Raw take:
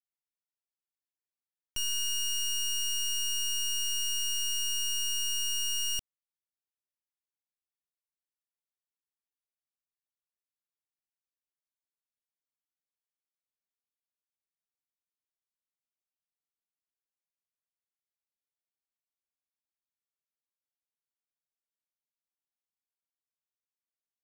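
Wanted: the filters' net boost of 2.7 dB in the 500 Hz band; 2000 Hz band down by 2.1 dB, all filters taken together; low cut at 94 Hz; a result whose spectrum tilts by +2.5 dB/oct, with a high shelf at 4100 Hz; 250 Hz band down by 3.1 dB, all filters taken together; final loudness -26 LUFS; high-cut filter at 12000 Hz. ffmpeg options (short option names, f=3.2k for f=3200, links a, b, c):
-af "highpass=94,lowpass=12k,equalizer=f=250:t=o:g=-6,equalizer=f=500:t=o:g=5,equalizer=f=2k:t=o:g=-9,highshelf=f=4.1k:g=7.5,volume=1.5dB"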